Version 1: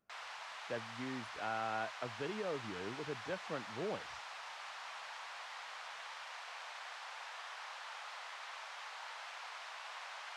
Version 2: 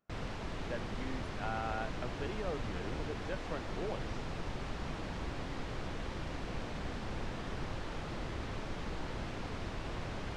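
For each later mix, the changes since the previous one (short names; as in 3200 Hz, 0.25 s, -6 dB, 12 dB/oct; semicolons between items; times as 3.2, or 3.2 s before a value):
background: remove inverse Chebyshev high-pass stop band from 310 Hz, stop band 50 dB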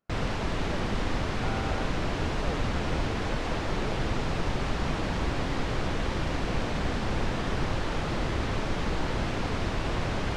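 background +11.0 dB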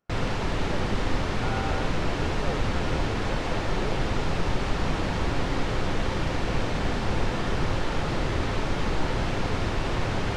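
reverb: on, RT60 0.65 s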